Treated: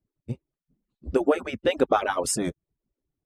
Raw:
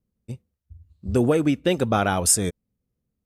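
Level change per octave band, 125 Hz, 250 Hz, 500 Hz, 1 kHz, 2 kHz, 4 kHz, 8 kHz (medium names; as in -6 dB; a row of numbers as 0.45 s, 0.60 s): -11.5 dB, -6.0 dB, -0.5 dB, -1.0 dB, -1.5 dB, -4.5 dB, -9.5 dB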